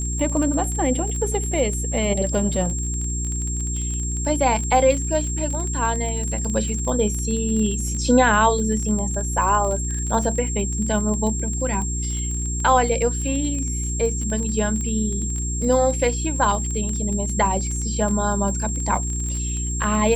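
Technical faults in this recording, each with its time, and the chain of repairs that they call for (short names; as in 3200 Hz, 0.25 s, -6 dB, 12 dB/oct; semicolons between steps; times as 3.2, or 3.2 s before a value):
crackle 27/s -26 dBFS
hum 60 Hz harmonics 6 -26 dBFS
tone 7500 Hz -28 dBFS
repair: de-click; notch 7500 Hz, Q 30; de-hum 60 Hz, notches 6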